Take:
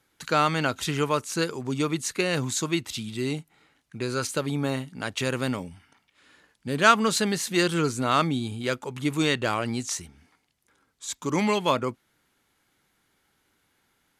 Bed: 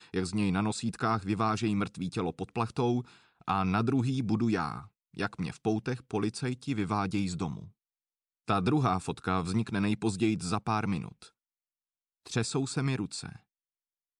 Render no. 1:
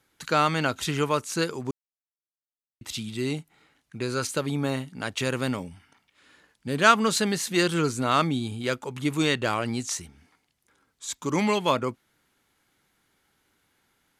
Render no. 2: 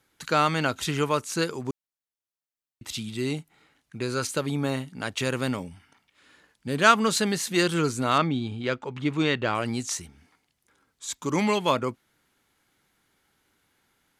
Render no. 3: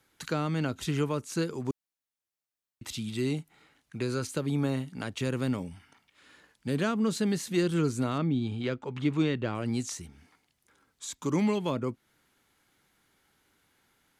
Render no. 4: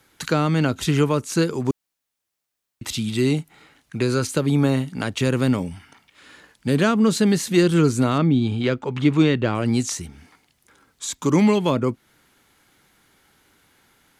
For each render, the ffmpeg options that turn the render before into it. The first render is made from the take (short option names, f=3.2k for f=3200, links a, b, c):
-filter_complex "[0:a]asplit=3[a][b][c];[a]atrim=end=1.71,asetpts=PTS-STARTPTS,afade=t=out:st=1.706:d=0.004:c=hsin[d];[b]atrim=start=1.71:end=2.81,asetpts=PTS-STARTPTS,volume=0[e];[c]atrim=start=2.81,asetpts=PTS-STARTPTS,afade=t=in:d=0.004:c=hsin[f];[d][e][f]concat=n=3:v=0:a=1"
-filter_complex "[0:a]asettb=1/sr,asplit=3[a][b][c];[a]atrim=end=8.184[d];[b]atrim=start=8.18:end=9.55,asetpts=PTS-STARTPTS,afade=t=in:d=0.004:c=qsin,afade=t=out:st=1.366:d=0.004:c=qsin,lowpass=3.8k[e];[c]atrim=start=9.546[f];[d][e]acrossfade=d=0.004:c1=hsin:c2=qsin[g];[g][f]acrossfade=d=0.004:c1=qsin:c2=hsin"
-filter_complex "[0:a]acrossover=split=410[a][b];[b]acompressor=threshold=-38dB:ratio=3[c];[a][c]amix=inputs=2:normalize=0"
-af "volume=10dB"